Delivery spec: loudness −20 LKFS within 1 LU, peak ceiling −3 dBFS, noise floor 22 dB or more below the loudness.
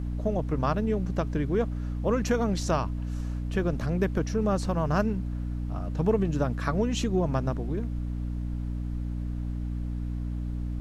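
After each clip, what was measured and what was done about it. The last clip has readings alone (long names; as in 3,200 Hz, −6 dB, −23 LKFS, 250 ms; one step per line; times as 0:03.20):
mains hum 60 Hz; hum harmonics up to 300 Hz; level of the hum −29 dBFS; background noise floor −32 dBFS; target noise floor −51 dBFS; integrated loudness −29.0 LKFS; sample peak −12.0 dBFS; target loudness −20.0 LKFS
→ mains-hum notches 60/120/180/240/300 Hz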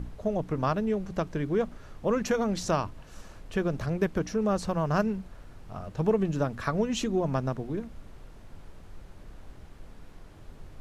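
mains hum none found; background noise floor −49 dBFS; target noise floor −52 dBFS
→ noise reduction from a noise print 6 dB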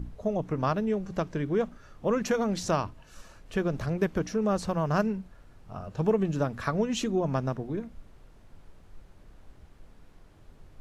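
background noise floor −55 dBFS; integrated loudness −29.5 LKFS; sample peak −13.5 dBFS; target loudness −20.0 LKFS
→ level +9.5 dB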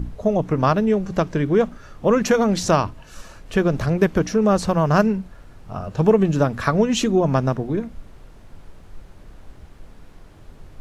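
integrated loudness −20.0 LKFS; sample peak −4.0 dBFS; background noise floor −45 dBFS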